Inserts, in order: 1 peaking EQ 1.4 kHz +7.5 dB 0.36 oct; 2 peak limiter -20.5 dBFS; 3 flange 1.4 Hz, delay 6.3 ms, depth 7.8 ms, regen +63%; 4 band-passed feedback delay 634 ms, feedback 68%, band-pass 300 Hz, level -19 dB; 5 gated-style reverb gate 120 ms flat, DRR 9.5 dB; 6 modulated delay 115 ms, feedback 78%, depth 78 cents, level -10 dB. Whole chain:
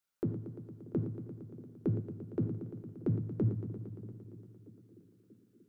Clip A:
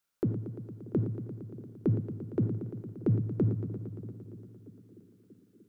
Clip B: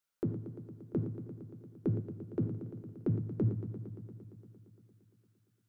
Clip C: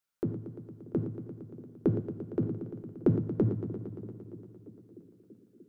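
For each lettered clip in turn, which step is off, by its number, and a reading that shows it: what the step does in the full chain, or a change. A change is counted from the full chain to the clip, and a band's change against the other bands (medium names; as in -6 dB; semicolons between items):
3, loudness change +4.5 LU; 4, momentary loudness spread change -2 LU; 2, crest factor change +3.5 dB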